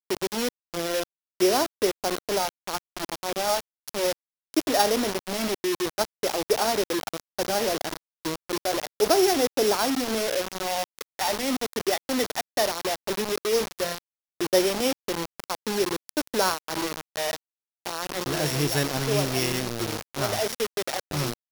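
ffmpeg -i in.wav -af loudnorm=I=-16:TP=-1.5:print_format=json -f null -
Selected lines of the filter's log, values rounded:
"input_i" : "-26.6",
"input_tp" : "-6.8",
"input_lra" : "2.5",
"input_thresh" : "-36.7",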